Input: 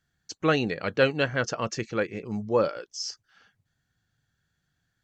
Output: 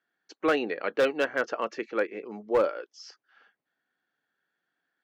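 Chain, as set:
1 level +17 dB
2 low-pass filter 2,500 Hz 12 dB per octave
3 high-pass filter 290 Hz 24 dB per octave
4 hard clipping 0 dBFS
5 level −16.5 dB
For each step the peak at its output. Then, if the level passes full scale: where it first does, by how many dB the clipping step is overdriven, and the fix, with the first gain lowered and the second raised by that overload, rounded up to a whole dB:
+9.0, +8.5, +8.0, 0.0, −16.5 dBFS
step 1, 8.0 dB
step 1 +9 dB, step 5 −8.5 dB

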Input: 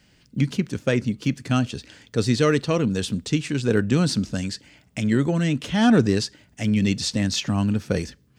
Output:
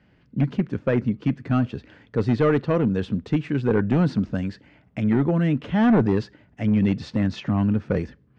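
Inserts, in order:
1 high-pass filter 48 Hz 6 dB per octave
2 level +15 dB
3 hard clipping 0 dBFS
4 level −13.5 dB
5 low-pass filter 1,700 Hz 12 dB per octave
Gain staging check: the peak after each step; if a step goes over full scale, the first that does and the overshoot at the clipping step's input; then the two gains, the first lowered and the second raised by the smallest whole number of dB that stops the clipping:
−5.0, +10.0, 0.0, −13.5, −13.0 dBFS
step 2, 10.0 dB
step 2 +5 dB, step 4 −3.5 dB

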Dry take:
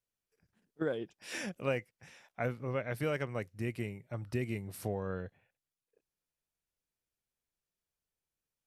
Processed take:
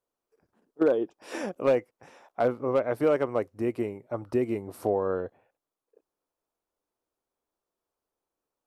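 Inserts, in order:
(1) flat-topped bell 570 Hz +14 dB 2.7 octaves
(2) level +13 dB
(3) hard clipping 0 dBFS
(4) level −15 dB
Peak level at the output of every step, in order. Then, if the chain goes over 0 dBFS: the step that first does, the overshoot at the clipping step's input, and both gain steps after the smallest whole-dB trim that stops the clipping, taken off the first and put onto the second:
−7.5, +5.5, 0.0, −15.0 dBFS
step 2, 5.5 dB
step 2 +7 dB, step 4 −9 dB

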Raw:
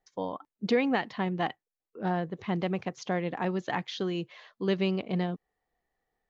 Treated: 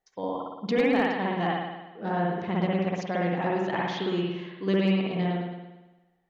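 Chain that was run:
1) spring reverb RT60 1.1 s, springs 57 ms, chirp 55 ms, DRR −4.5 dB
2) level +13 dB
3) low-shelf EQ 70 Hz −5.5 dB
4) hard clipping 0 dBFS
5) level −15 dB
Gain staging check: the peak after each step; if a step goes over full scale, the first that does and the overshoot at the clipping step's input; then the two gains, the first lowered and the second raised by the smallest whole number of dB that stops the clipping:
−7.5, +5.5, +5.5, 0.0, −15.0 dBFS
step 2, 5.5 dB
step 2 +7 dB, step 5 −9 dB

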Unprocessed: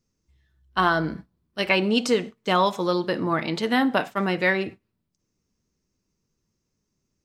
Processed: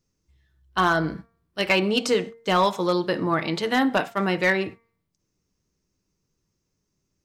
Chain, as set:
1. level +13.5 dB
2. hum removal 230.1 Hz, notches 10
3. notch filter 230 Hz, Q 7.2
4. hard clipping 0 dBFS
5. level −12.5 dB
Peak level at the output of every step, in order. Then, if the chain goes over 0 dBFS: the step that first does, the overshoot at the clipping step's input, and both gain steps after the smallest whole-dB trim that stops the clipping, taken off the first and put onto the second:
+7.0, +7.0, +7.0, 0.0, −12.5 dBFS
step 1, 7.0 dB
step 1 +6.5 dB, step 5 −5.5 dB

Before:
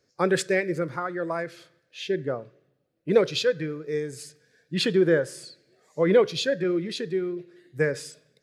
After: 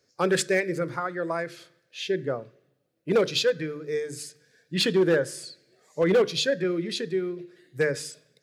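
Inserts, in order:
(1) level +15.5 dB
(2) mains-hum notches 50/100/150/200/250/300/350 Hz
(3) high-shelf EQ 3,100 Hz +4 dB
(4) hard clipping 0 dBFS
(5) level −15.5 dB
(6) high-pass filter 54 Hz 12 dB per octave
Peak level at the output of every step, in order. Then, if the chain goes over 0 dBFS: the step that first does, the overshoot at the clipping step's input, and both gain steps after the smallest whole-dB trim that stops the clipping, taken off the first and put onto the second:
+8.0, +8.0, +8.5, 0.0, −15.5, −13.5 dBFS
step 1, 8.5 dB
step 1 +6.5 dB, step 5 −6.5 dB

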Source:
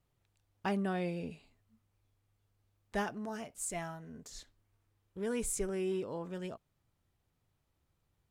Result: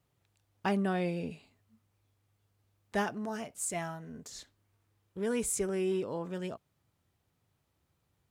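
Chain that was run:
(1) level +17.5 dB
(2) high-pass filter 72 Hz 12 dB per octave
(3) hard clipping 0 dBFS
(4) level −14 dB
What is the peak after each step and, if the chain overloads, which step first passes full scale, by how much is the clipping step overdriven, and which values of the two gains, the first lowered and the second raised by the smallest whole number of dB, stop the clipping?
−6.5, −5.0, −5.0, −19.0 dBFS
no step passes full scale

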